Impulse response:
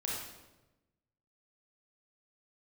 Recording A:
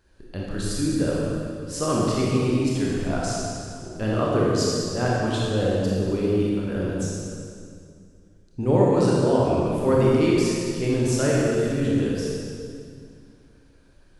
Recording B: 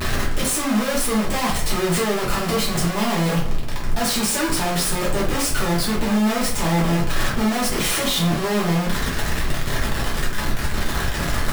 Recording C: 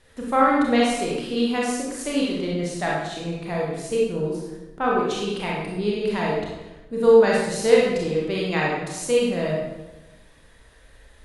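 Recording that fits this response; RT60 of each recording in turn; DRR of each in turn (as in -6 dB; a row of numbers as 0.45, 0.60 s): C; 2.3, 0.50, 1.1 s; -5.5, -6.0, -4.5 dB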